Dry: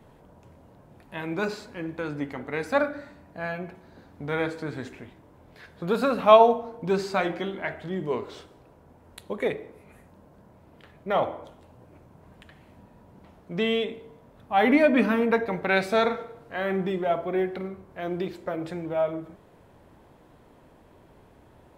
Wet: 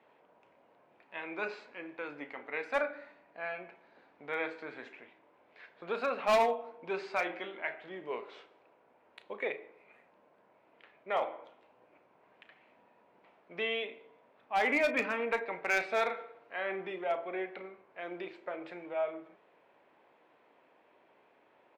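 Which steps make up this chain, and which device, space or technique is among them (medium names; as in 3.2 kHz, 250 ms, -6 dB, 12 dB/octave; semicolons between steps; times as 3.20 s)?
megaphone (band-pass 460–3200 Hz; peaking EQ 2.4 kHz +7.5 dB 0.59 oct; hard clipper -15.5 dBFS, distortion -10 dB; doubling 34 ms -13 dB); trim -7 dB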